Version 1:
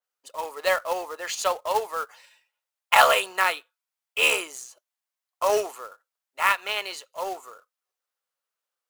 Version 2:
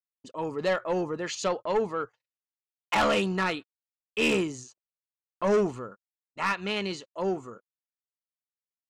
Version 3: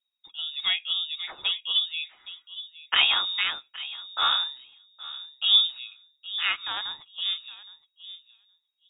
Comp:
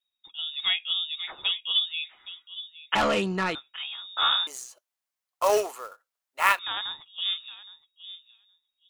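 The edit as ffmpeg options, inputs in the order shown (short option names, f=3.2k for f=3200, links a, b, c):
-filter_complex "[2:a]asplit=3[a][b][c];[a]atrim=end=2.952[d];[1:a]atrim=start=2.948:end=3.552[e];[b]atrim=start=3.548:end=4.472[f];[0:a]atrim=start=4.468:end=6.592[g];[c]atrim=start=6.588[h];[d][e]acrossfade=d=0.004:c1=hsin:c2=hsin[i];[i][f]acrossfade=d=0.004:c1=hsin:c2=hsin[j];[j][g]acrossfade=d=0.004:c1=hsin:c2=hsin[k];[k][h]acrossfade=d=0.004:c1=hsin:c2=hsin"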